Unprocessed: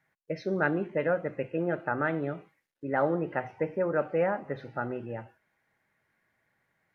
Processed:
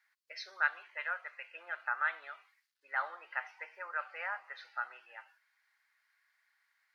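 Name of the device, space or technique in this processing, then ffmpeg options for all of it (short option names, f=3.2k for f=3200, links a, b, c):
headphones lying on a table: -filter_complex "[0:a]asettb=1/sr,asplit=3[a][b][c];[a]atrim=end=0.664[d];[b]atrim=start=0.66:end=1.51,asetpts=PTS-STARTPTS,afade=t=in:d=0.004:c=qsin,afade=t=out:st=0.846:d=0.004:c=qsin,highpass=460[e];[c]atrim=start=1.506[f];[d][e]acrossfade=d=0.004:c1=hsin:c2=qsin[g];[g][f]acrossfade=d=0.004:c1=qsin:c2=hsin,highpass=f=1.1k:w=0.5412,highpass=f=1.1k:w=1.3066,equalizer=f=4.6k:t=o:w=0.52:g=8.5"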